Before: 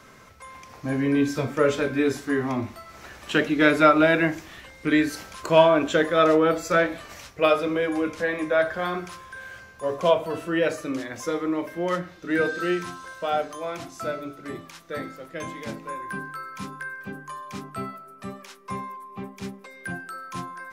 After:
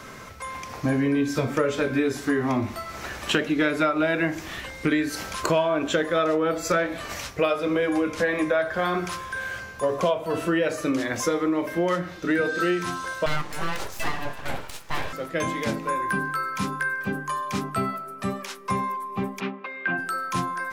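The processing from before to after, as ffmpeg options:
-filter_complex "[0:a]asettb=1/sr,asplit=3[s0][s1][s2];[s0]atrim=end=13.264[s3];[s1]atrim=start=13.26:end=15.13,asetpts=PTS-STARTPTS,afade=t=in:d=0.004:c=qsin,afade=t=out:st=1.866:d=0.004:c=qsin,aeval=exprs='abs(val(0))':c=same[s4];[s2]atrim=start=15.126[s5];[s3][s4]acrossfade=d=0.004:c1=hsin:c2=qsin[s6];[s6][s5]acrossfade=d=0.004:c1=qsin:c2=hsin,asplit=3[s7][s8][s9];[s7]afade=t=out:st=19.39:d=0.02[s10];[s8]highpass=f=200:w=0.5412,highpass=f=200:w=1.3066,equalizer=f=210:t=q:w=4:g=-4,equalizer=f=460:t=q:w=4:g=-7,equalizer=f=1200:t=q:w=4:g=5,equalizer=f=2600:t=q:w=4:g=5,lowpass=f=3200:w=0.5412,lowpass=f=3200:w=1.3066,afade=t=in:st=19.39:d=0.02,afade=t=out:st=19.97:d=0.02[s11];[s9]afade=t=in:st=19.97:d=0.02[s12];[s10][s11][s12]amix=inputs=3:normalize=0,acompressor=threshold=0.0355:ratio=6,volume=2.66"

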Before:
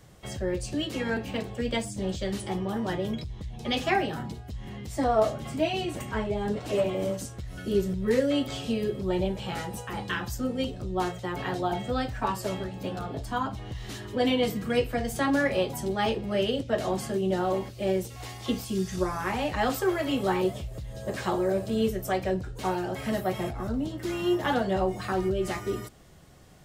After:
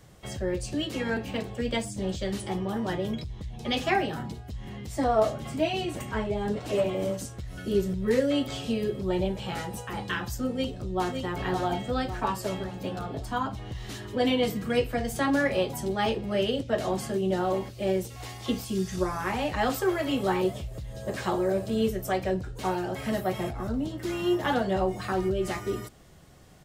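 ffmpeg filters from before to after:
-filter_complex "[0:a]asplit=2[s0][s1];[s1]afade=t=in:st=10.52:d=0.01,afade=t=out:st=11.17:d=0.01,aecho=0:1:560|1120|1680|2240|2800|3360:0.562341|0.253054|0.113874|0.0512434|0.0230595|0.0103768[s2];[s0][s2]amix=inputs=2:normalize=0"

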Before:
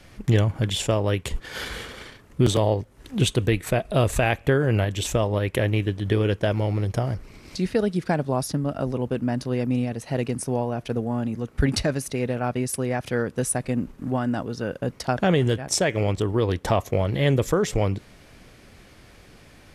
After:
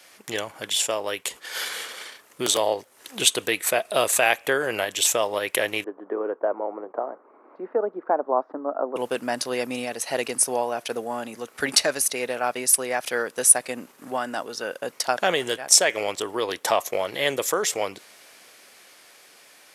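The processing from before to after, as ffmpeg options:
-filter_complex "[0:a]asettb=1/sr,asplit=3[s0][s1][s2];[s0]atrim=end=5.844[s3];[s1]atrim=start=5.84:end=8.96,asetpts=PTS-STARTPTS,afade=t=in:d=0.004:c=qsin,afade=t=out:st=3.116:d=0.004:c=qsin,asuperpass=centerf=550:order=8:qfactor=0.56[s4];[s2]atrim=start=8.956[s5];[s3][s4]acrossfade=d=0.004:c1=hsin:c2=qsin[s6];[s6][s5]acrossfade=d=0.004:c1=qsin:c2=hsin,highpass=580,highshelf=f=5600:g=11,dynaudnorm=f=640:g=7:m=2.51"

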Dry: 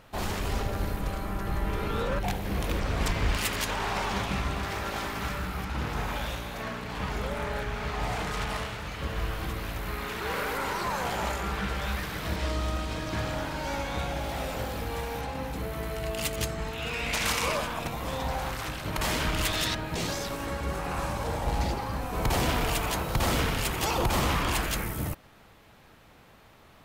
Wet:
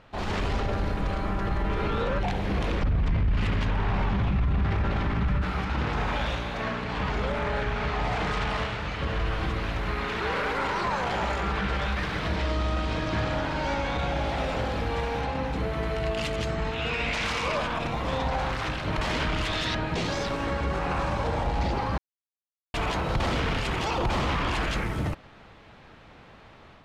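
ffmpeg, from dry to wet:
-filter_complex "[0:a]asettb=1/sr,asplit=3[s0][s1][s2];[s0]atrim=end=2.834[s3];[s1]atrim=start=2.83:end=5.42,asetpts=PTS-STARTPTS,afade=t=in:d=0.004:c=qsin,afade=t=out:st=2.586:d=0.004:c=qsin,bass=f=250:g=15,treble=f=4000:g=-9[s4];[s2]atrim=start=5.416[s5];[s3][s4]acrossfade=d=0.004:c1=hsin:c2=qsin[s6];[s6][s5]acrossfade=d=0.004:c1=qsin:c2=hsin,asplit=3[s7][s8][s9];[s7]atrim=end=21.98,asetpts=PTS-STARTPTS,afade=t=out:st=21.976:d=0.004:c=hsin[s10];[s8]atrim=start=21.98:end=22.74,asetpts=PTS-STARTPTS,volume=0[s11];[s9]atrim=start=22.74,asetpts=PTS-STARTPTS,afade=t=in:d=0.004:c=hsin[s12];[s10][s11][s12]concat=n=3:v=0:a=1,alimiter=limit=0.0668:level=0:latency=1:release=23,lowpass=4200,dynaudnorm=f=160:g=3:m=1.78"

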